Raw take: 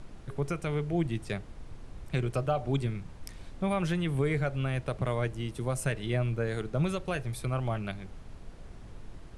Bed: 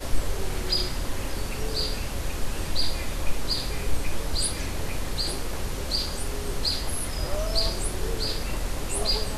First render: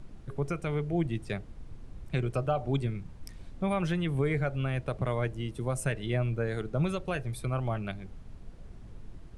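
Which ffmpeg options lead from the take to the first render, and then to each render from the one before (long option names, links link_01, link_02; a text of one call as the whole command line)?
ffmpeg -i in.wav -af "afftdn=noise_reduction=6:noise_floor=-47" out.wav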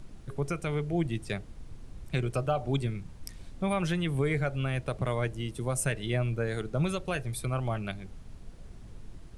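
ffmpeg -i in.wav -af "highshelf=frequency=3600:gain=8" out.wav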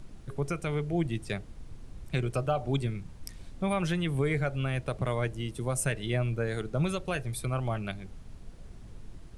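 ffmpeg -i in.wav -af anull out.wav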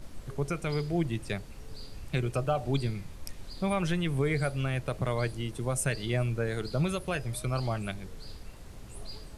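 ffmpeg -i in.wav -i bed.wav -filter_complex "[1:a]volume=-20.5dB[link_01];[0:a][link_01]amix=inputs=2:normalize=0" out.wav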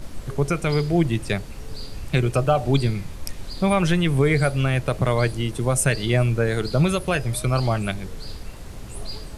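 ffmpeg -i in.wav -af "volume=9.5dB" out.wav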